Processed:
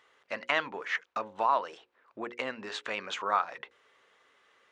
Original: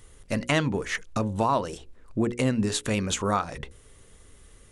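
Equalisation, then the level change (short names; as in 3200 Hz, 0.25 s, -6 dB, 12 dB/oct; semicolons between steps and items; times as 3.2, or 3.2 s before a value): HPF 1000 Hz 12 dB/oct; air absorption 68 m; tape spacing loss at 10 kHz 27 dB; +5.5 dB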